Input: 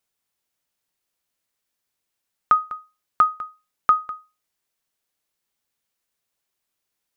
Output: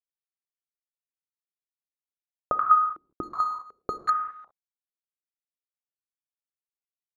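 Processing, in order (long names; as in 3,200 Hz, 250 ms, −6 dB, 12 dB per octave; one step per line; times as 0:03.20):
reverb whose tail is shaped and stops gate 430 ms falling, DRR 9.5 dB
0:03.23–0:04.10: bad sample-rate conversion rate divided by 8×, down filtered, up zero stuff
bit reduction 10 bits
low-pass on a step sequencer 2.7 Hz 330–2,300 Hz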